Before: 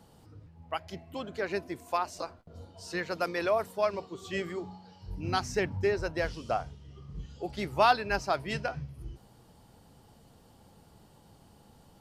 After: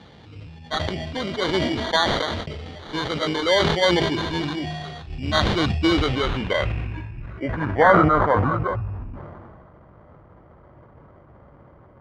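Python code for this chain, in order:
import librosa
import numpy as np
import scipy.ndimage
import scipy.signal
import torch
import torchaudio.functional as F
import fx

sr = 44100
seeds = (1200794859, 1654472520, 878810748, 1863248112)

p1 = fx.pitch_glide(x, sr, semitones=-7.0, runs='starting unshifted')
p2 = scipy.signal.sosfilt(scipy.signal.butter(2, 46.0, 'highpass', fs=sr, output='sos'), p1)
p3 = fx.rider(p2, sr, range_db=5, speed_s=2.0)
p4 = p2 + F.gain(torch.from_numpy(p3), 1.5).numpy()
p5 = fx.sample_hold(p4, sr, seeds[0], rate_hz=2600.0, jitter_pct=0)
p6 = fx.filter_sweep_lowpass(p5, sr, from_hz=3800.0, to_hz=1200.0, start_s=5.9, end_s=8.2, q=2.4)
y = fx.sustainer(p6, sr, db_per_s=26.0)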